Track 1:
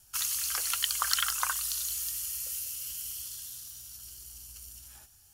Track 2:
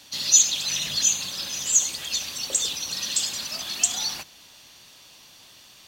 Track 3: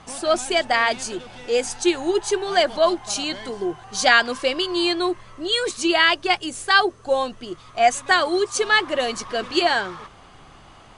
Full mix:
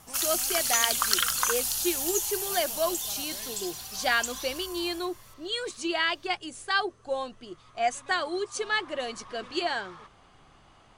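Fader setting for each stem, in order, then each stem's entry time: +3.0, −12.5, −10.0 decibels; 0.00, 0.40, 0.00 seconds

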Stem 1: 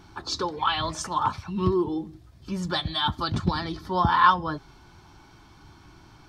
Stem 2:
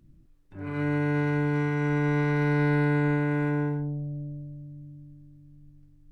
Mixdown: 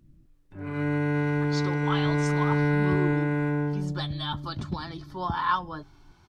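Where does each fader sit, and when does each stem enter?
−7.5, 0.0 decibels; 1.25, 0.00 seconds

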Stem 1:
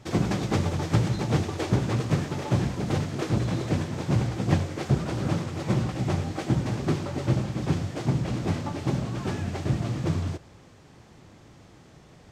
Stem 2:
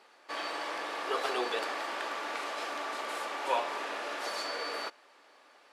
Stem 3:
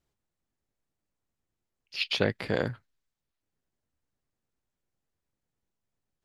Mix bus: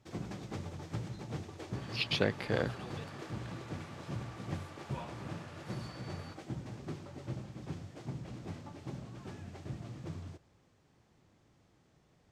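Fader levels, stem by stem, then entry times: −16.5, −16.0, −4.0 decibels; 0.00, 1.45, 0.00 seconds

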